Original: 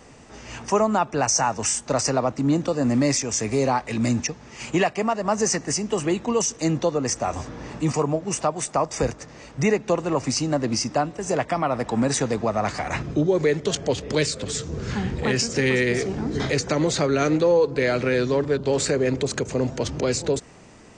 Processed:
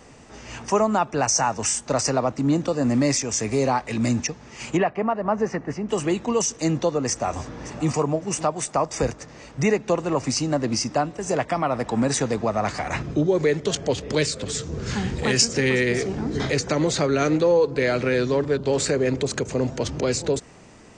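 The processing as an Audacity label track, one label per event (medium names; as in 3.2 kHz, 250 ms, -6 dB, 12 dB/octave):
4.770000	5.890000	low-pass 1.8 kHz
7.090000	7.890000	echo throw 560 ms, feedback 15%, level -16 dB
14.860000	15.450000	treble shelf 4.6 kHz +10.5 dB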